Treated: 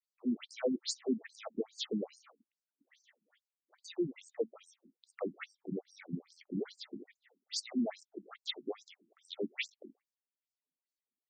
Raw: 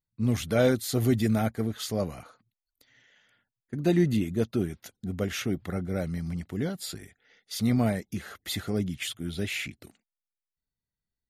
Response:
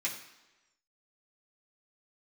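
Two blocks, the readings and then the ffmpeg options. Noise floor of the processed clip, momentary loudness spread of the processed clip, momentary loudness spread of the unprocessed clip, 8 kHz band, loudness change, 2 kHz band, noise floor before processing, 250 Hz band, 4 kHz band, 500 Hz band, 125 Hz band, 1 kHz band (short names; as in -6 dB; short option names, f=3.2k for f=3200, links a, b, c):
under -85 dBFS, 15 LU, 13 LU, -9.0 dB, -10.5 dB, -11.5 dB, under -85 dBFS, -11.0 dB, -6.0 dB, -10.0 dB, -23.0 dB, -14.5 dB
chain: -af "acompressor=threshold=-25dB:ratio=10,equalizer=f=1.5k:t=o:w=0.29:g=-8,afftfilt=real='re*between(b*sr/1024,240*pow(6400/240,0.5+0.5*sin(2*PI*2.4*pts/sr))/1.41,240*pow(6400/240,0.5+0.5*sin(2*PI*2.4*pts/sr))*1.41)':imag='im*between(b*sr/1024,240*pow(6400/240,0.5+0.5*sin(2*PI*2.4*pts/sr))/1.41,240*pow(6400/240,0.5+0.5*sin(2*PI*2.4*pts/sr))*1.41)':win_size=1024:overlap=0.75,volume=1.5dB"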